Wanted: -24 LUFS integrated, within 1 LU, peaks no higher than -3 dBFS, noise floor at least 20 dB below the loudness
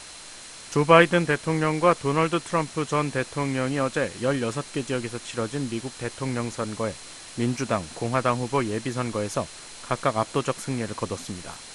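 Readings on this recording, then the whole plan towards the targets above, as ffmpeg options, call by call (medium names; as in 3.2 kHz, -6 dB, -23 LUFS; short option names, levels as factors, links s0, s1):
steady tone 4.1 kHz; tone level -50 dBFS; noise floor -43 dBFS; noise floor target -46 dBFS; loudness -25.5 LUFS; peak level -2.0 dBFS; loudness target -24.0 LUFS
-> -af "bandreject=f=4100:w=30"
-af "afftdn=nr=6:nf=-43"
-af "volume=1.19,alimiter=limit=0.708:level=0:latency=1"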